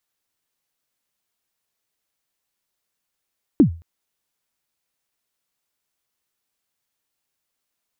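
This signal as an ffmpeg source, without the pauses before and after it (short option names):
-f lavfi -i "aevalsrc='0.562*pow(10,-3*t/0.33)*sin(2*PI*(340*0.101/log(83/340)*(exp(log(83/340)*min(t,0.101)/0.101)-1)+83*max(t-0.101,0)))':d=0.22:s=44100"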